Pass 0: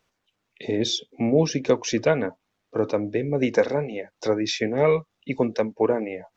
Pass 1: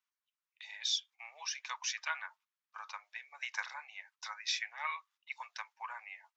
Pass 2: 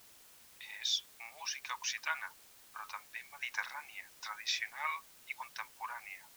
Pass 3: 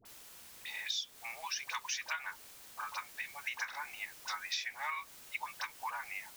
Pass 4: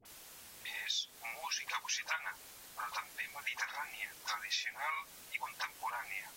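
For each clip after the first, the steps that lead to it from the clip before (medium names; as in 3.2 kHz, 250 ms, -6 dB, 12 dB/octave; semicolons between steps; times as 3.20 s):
gate -46 dBFS, range -12 dB; steep high-pass 940 Hz 48 dB/octave; trim -6.5 dB
tone controls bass +6 dB, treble -2 dB; in parallel at -10 dB: word length cut 8-bit, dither triangular; on the sum: trim -1.5 dB
compression 6:1, threshold -40 dBFS, peak gain reduction 11.5 dB; phase dispersion highs, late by 54 ms, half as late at 920 Hz; trim +5.5 dB
AAC 48 kbps 44.1 kHz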